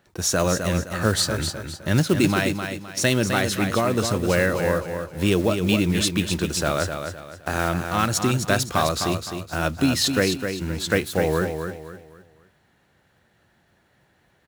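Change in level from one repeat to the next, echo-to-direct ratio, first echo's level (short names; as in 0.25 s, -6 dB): -9.5 dB, -6.5 dB, -7.0 dB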